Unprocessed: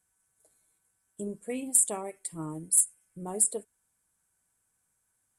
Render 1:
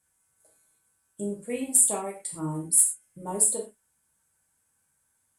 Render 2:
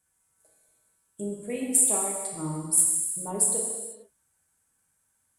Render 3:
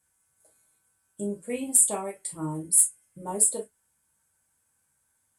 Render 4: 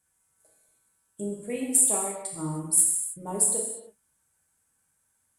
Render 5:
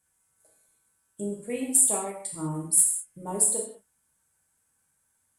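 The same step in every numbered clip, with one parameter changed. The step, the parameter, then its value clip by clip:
reverb whose tail is shaped and stops, gate: 140, 510, 80, 350, 230 milliseconds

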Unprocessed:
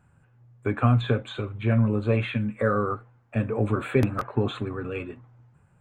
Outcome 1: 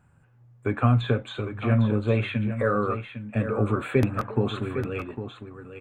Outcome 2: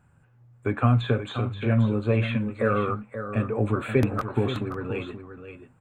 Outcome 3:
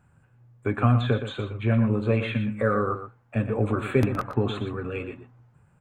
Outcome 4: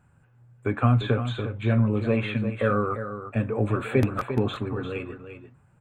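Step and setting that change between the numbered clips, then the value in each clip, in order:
single-tap delay, delay time: 804, 529, 119, 348 milliseconds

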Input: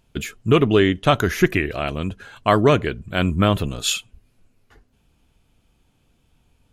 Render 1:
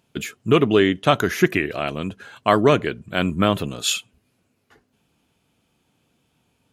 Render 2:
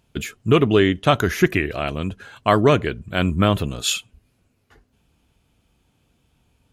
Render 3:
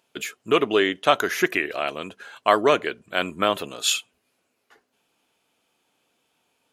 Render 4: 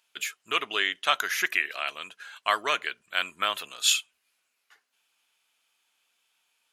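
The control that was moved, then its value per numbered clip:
high-pass filter, corner frequency: 140, 45, 430, 1,400 Hertz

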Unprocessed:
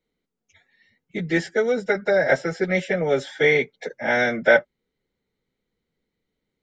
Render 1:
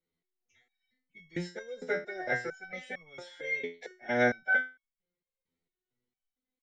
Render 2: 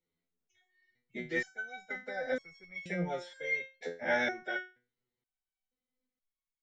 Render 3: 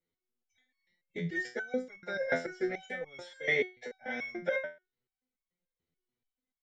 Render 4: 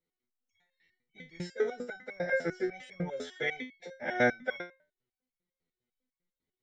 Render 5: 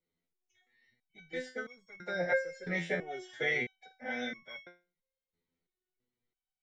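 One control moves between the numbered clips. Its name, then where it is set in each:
step-sequenced resonator, speed: 4.4, 2.1, 6.9, 10, 3 Hertz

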